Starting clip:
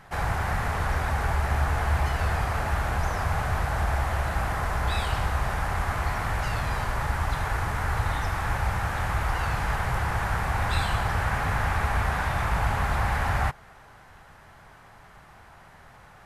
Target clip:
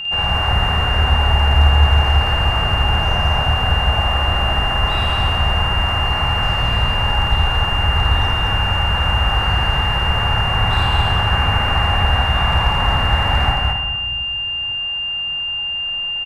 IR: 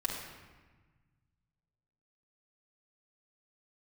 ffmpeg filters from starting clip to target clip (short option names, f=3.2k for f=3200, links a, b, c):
-filter_complex "[0:a]highshelf=f=3.4k:g=-10.5,aeval=exprs='val(0)+0.0398*sin(2*PI*2800*n/s)':c=same,asoftclip=type=hard:threshold=-15dB,aecho=1:1:52.48|218.7:0.794|0.794,asplit=2[a][b];[1:a]atrim=start_sample=2205,adelay=80[c];[b][c]afir=irnorm=-1:irlink=0,volume=-9dB[d];[a][d]amix=inputs=2:normalize=0,volume=3.5dB"